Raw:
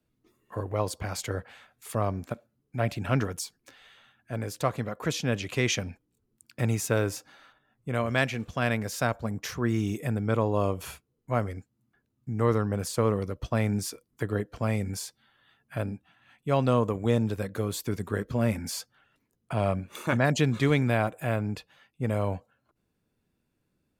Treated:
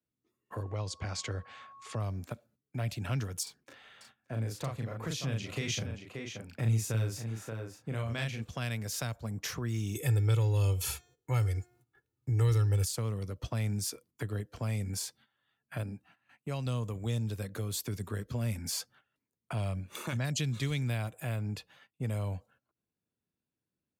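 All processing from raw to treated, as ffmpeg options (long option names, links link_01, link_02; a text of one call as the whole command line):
ffmpeg -i in.wav -filter_complex "[0:a]asettb=1/sr,asplit=3[link_01][link_02][link_03];[link_01]atrim=end=0.624[link_04];[link_02]atrim=start=0.62:end=2,asetpts=PTS-STARTPTS,afade=type=in:duration=0.004:curve=qsin,afade=type=out:start_time=1.376:duration=0.004:curve=qsin,lowpass=frequency=7000:width=0.5412,lowpass=frequency=7000:width=1.3066,aeval=exprs='val(0)+0.00316*sin(2*PI*1100*n/s)':channel_layout=same[link_05];[link_03]atrim=start=1.996[link_06];[link_04][link_05]acrossfade=duration=0.004:curve1=hsin:curve2=qsin[link_07];[link_07][link_06]acrossfade=duration=0.004:curve1=qsin:curve2=hsin,asettb=1/sr,asplit=3[link_08][link_09][link_10];[link_08]atrim=end=3.434[link_11];[link_09]atrim=start=3.43:end=8.42,asetpts=PTS-STARTPTS,afade=type=in:duration=0.004:curve=qsin,afade=type=out:start_time=4.986:duration=0.004:curve=qsin,highshelf=frequency=3400:gain=-8.5,asplit=2[link_12][link_13];[link_13]adelay=36,volume=-2.5dB[link_14];[link_12][link_14]amix=inputs=2:normalize=0,atrim=end_sample=220059,aecho=1:1:578:0.251,atrim=end_sample=220059[link_15];[link_10]atrim=start=8.416[link_16];[link_11][link_15]acrossfade=duration=0.004:curve1=hsin:curve2=qsin[link_17];[link_17][link_16]acrossfade=duration=0.004:curve1=qsin:curve2=hsin,asettb=1/sr,asplit=3[link_18][link_19][link_20];[link_18]atrim=end=9.954[link_21];[link_19]atrim=start=9.95:end=12.85,asetpts=PTS-STARTPTS,afade=type=in:duration=0.004:curve=qsin,afade=type=out:start_time=2.896:duration=0.004:curve=qsin,aecho=1:1:2.3:0.83,atrim=end_sample=127890,bandreject=frequency=357.6:width_type=h:width=4,bandreject=frequency=715.2:width_type=h:width=4,bandreject=frequency=1072.8:width_type=h:width=4,bandreject=frequency=1430.4:width_type=h:width=4,bandreject=frequency=1788:width_type=h:width=4,bandreject=frequency=2145.6:width_type=h:width=4,bandreject=frequency=2503.2:width_type=h:width=4,bandreject=frequency=2860.8:width_type=h:width=4,bandreject=frequency=3218.4:width_type=h:width=4,bandreject=frequency=3576:width_type=h:width=4,bandreject=frequency=3933.6:width_type=h:width=4,bandreject=frequency=4291.2:width_type=h:width=4,bandreject=frequency=4648.8:width_type=h:width=4,bandreject=frequency=5006.4:width_type=h:width=4,bandreject=frequency=5364:width_type=h:width=4,bandreject=frequency=5721.6:width_type=h:width=4,bandreject=frequency=6079.2:width_type=h:width=4,bandreject=frequency=6436.8:width_type=h:width=4,bandreject=frequency=6794.4:width_type=h:width=4,bandreject=frequency=7152:width_type=h:width=4,bandreject=frequency=7509.6:width_type=h:width=4,acontrast=48[link_22];[link_20]atrim=start=12.846[link_23];[link_21][link_22]acrossfade=duration=0.004:curve1=hsin:curve2=qsin[link_24];[link_24][link_23]acrossfade=duration=0.004:curve1=qsin:curve2=hsin,asettb=1/sr,asplit=3[link_25][link_26][link_27];[link_25]atrim=end=15.834[link_28];[link_26]atrim=start=15.83:end=16.66,asetpts=PTS-STARTPTS,afade=type=in:duration=0.004:curve=qsin,afade=type=out:start_time=0.826:duration=0.004:curve=qsin,lowshelf=frequency=71:gain=-9,bandreject=frequency=3400:width=5.3[link_29];[link_27]atrim=start=16.656[link_30];[link_28][link_29]acrossfade=duration=0.004:curve1=hsin:curve2=qsin[link_31];[link_31][link_30]acrossfade=duration=0.004:curve1=qsin:curve2=hsin,highpass=69,agate=range=-14dB:threshold=-58dB:ratio=16:detection=peak,acrossover=split=130|3000[link_32][link_33][link_34];[link_33]acompressor=threshold=-39dB:ratio=6[link_35];[link_32][link_35][link_34]amix=inputs=3:normalize=0" out.wav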